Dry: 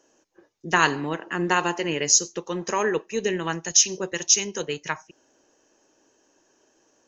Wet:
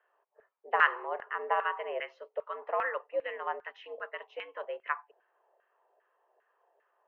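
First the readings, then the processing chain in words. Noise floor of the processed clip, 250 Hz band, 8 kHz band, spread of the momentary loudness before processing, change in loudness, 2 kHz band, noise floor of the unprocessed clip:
−76 dBFS, −29.0 dB, can't be measured, 12 LU, −10.5 dB, −6.0 dB, −65 dBFS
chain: single-sideband voice off tune +88 Hz 290–2,900 Hz
auto-filter band-pass saw down 2.5 Hz 640–1,600 Hz

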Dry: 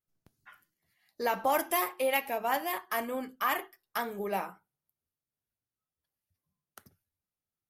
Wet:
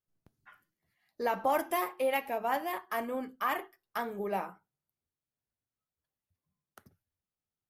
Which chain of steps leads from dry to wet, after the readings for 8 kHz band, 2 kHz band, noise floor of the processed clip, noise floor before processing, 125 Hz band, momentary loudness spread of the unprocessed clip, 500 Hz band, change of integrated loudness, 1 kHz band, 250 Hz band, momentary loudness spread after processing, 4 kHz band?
−8.0 dB, −3.0 dB, below −85 dBFS, below −85 dBFS, can't be measured, 8 LU, −0.5 dB, −1.5 dB, −1.0 dB, 0.0 dB, 8 LU, −5.5 dB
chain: high-shelf EQ 2,400 Hz −8.5 dB

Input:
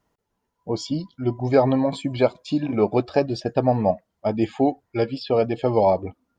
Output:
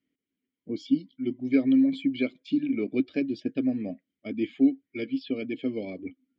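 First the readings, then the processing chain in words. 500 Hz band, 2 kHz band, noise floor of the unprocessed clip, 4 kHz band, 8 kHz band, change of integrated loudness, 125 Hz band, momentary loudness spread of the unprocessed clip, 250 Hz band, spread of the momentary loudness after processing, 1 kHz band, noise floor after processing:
−14.0 dB, −3.0 dB, −78 dBFS, −7.5 dB, can't be measured, −5.0 dB, −17.0 dB, 8 LU, 0.0 dB, 15 LU, below −25 dB, below −85 dBFS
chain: formant filter i
harmonic and percussive parts rebalanced percussive +5 dB
level +2.5 dB

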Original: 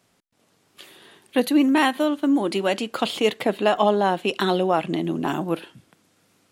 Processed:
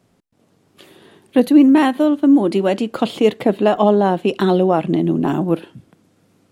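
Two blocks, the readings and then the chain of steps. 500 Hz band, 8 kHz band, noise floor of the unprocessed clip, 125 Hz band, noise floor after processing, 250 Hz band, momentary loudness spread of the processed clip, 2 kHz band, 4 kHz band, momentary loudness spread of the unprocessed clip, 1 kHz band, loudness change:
+6.0 dB, can't be measured, −65 dBFS, +9.0 dB, −60 dBFS, +8.5 dB, 8 LU, −1.0 dB, −2.5 dB, 7 LU, +2.5 dB, +6.5 dB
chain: tilt shelving filter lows +6.5 dB, about 730 Hz
level +3.5 dB

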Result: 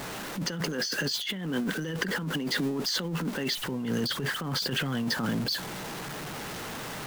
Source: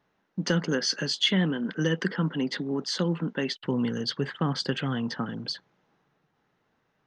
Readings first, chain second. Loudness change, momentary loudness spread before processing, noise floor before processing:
−2.0 dB, 8 LU, −74 dBFS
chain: converter with a step at zero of −35.5 dBFS
high-shelf EQ 6,800 Hz +4.5 dB
compressor whose output falls as the input rises −30 dBFS, ratio −1

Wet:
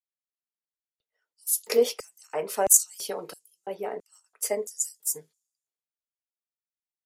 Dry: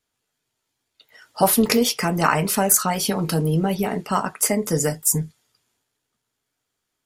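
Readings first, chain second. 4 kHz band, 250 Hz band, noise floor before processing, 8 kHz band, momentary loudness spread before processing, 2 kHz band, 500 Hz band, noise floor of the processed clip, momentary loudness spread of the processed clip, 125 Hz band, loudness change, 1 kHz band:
−11.0 dB, −22.0 dB, −79 dBFS, −3.0 dB, 7 LU, −15.0 dB, −4.5 dB, below −85 dBFS, 21 LU, below −30 dB, −5.5 dB, −13.5 dB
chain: auto-filter high-pass square 1.5 Hz 470–7,100 Hz
multiband upward and downward expander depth 70%
level −11 dB

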